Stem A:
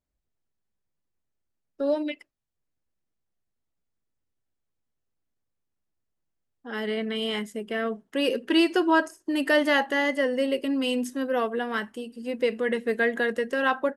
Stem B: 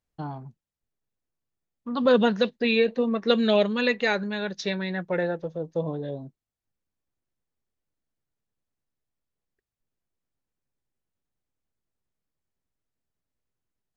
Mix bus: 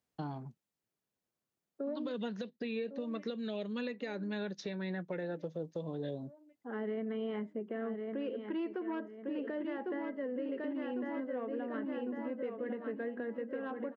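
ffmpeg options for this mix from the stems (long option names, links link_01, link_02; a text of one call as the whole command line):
ffmpeg -i stem1.wav -i stem2.wav -filter_complex "[0:a]lowpass=1300,aemphasis=mode=reproduction:type=75kf,asoftclip=type=tanh:threshold=-12.5dB,volume=-3.5dB,asplit=3[link_01][link_02][link_03];[link_02]volume=-5.5dB[link_04];[1:a]volume=0.5dB[link_05];[link_03]apad=whole_len=615642[link_06];[link_05][link_06]sidechaincompress=threshold=-36dB:ratio=8:attack=16:release=686[link_07];[link_04]aecho=0:1:1102|2204|3306|4408|5510|6612:1|0.43|0.185|0.0795|0.0342|0.0147[link_08];[link_01][link_07][link_08]amix=inputs=3:normalize=0,highpass=150,acrossover=split=480|1800[link_09][link_10][link_11];[link_09]acompressor=threshold=-33dB:ratio=4[link_12];[link_10]acompressor=threshold=-44dB:ratio=4[link_13];[link_11]acompressor=threshold=-47dB:ratio=4[link_14];[link_12][link_13][link_14]amix=inputs=3:normalize=0,alimiter=level_in=5dB:limit=-24dB:level=0:latency=1:release=469,volume=-5dB" out.wav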